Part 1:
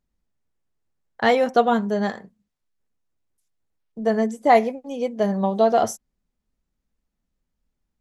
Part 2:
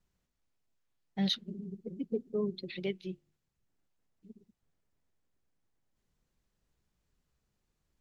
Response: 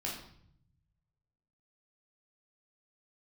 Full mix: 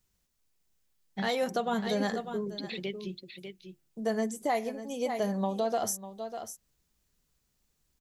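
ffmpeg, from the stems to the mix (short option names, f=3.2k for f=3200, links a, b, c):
-filter_complex "[0:a]aemphasis=mode=production:type=75kf,volume=-7dB,asplit=2[a][b];[b]volume=-14.5dB[c];[1:a]highshelf=f=3.4k:g=11,acompressor=threshold=-30dB:ratio=6,volume=0dB,asplit=2[d][e];[e]volume=-8dB[f];[c][f]amix=inputs=2:normalize=0,aecho=0:1:597:1[g];[a][d][g]amix=inputs=3:normalize=0,alimiter=limit=-20dB:level=0:latency=1:release=188"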